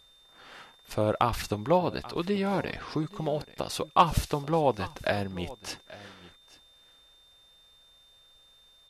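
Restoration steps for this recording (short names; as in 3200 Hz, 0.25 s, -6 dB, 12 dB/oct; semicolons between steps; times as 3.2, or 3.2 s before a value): clip repair -8.5 dBFS; notch 3600 Hz, Q 30; inverse comb 0.834 s -19 dB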